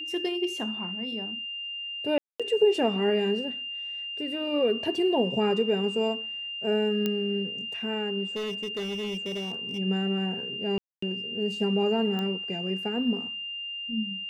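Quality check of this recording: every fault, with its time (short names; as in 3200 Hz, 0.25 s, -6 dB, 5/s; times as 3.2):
tone 2800 Hz -33 dBFS
2.18–2.4 gap 0.216 s
7.06 pop -14 dBFS
8.35–9.79 clipped -28.5 dBFS
10.78–11.02 gap 0.244 s
12.19 pop -20 dBFS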